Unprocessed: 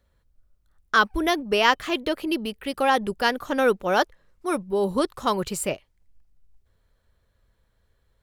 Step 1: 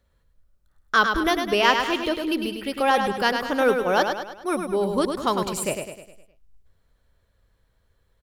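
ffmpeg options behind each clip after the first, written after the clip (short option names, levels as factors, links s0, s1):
-af "aecho=1:1:103|206|309|412|515|618:0.501|0.241|0.115|0.0554|0.0266|0.0128"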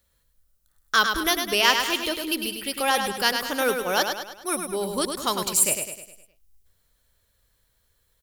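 -af "crystalizer=i=5.5:c=0,volume=0.531"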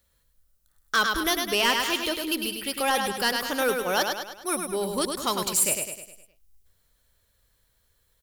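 -af "asoftclip=type=tanh:threshold=0.178"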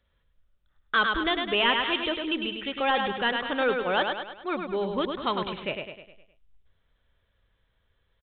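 -af "aresample=8000,aresample=44100"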